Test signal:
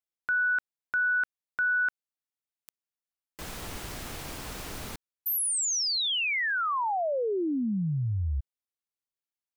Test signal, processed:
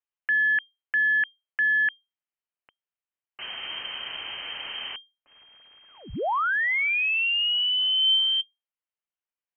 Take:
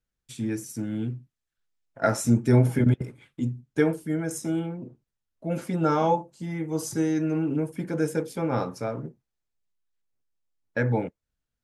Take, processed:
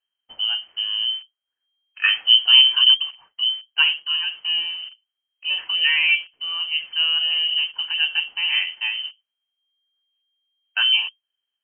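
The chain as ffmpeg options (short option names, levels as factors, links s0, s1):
-filter_complex "[0:a]equalizer=f=110:t=o:w=0.42:g=5,aeval=exprs='0.473*(cos(1*acos(clip(val(0)/0.473,-1,1)))-cos(1*PI/2))+0.0188*(cos(2*acos(clip(val(0)/0.473,-1,1)))-cos(2*PI/2))+0.0299*(cos(4*acos(clip(val(0)/0.473,-1,1)))-cos(4*PI/2))+0.00335*(cos(6*acos(clip(val(0)/0.473,-1,1)))-cos(6*PI/2))':c=same,asplit=2[s0][s1];[s1]acrusher=bits=6:mix=0:aa=0.000001,volume=0.398[s2];[s0][s2]amix=inputs=2:normalize=0,lowpass=f=2700:t=q:w=0.5098,lowpass=f=2700:t=q:w=0.6013,lowpass=f=2700:t=q:w=0.9,lowpass=f=2700:t=q:w=2.563,afreqshift=-3200,volume=1.12"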